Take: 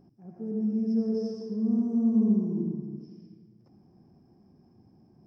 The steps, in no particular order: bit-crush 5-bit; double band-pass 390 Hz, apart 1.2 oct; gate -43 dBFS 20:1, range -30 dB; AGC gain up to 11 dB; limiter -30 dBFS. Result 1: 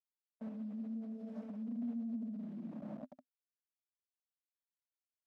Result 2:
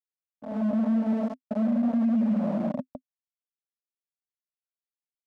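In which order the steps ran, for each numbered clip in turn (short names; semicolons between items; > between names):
AGC > bit-crush > limiter > gate > double band-pass; bit-crush > double band-pass > limiter > AGC > gate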